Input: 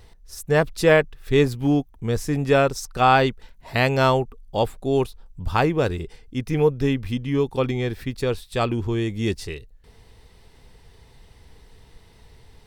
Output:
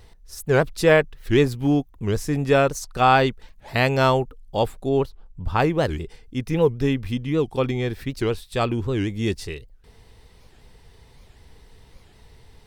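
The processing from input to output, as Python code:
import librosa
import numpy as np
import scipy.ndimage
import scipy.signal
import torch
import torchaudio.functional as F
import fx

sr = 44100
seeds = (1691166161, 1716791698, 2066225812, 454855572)

y = fx.high_shelf(x, sr, hz=4100.0, db=-11.5, at=(4.89, 5.6))
y = fx.record_warp(y, sr, rpm=78.0, depth_cents=250.0)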